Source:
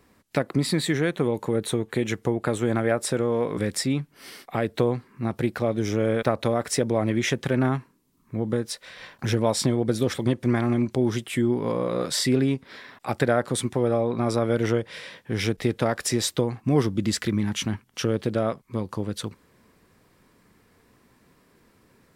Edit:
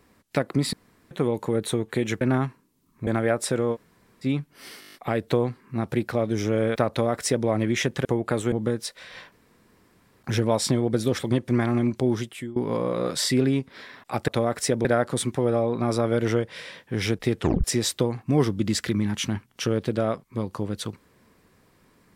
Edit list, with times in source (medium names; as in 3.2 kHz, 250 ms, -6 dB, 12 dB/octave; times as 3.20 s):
0.73–1.11 s: room tone
2.21–2.68 s: swap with 7.52–8.38 s
3.35–3.85 s: room tone, crossfade 0.06 s
4.41 s: stutter 0.02 s, 8 plays
6.37–6.94 s: copy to 13.23 s
9.18 s: insert room tone 0.91 s
11.04–11.51 s: fade out linear, to -21 dB
15.77 s: tape stop 0.25 s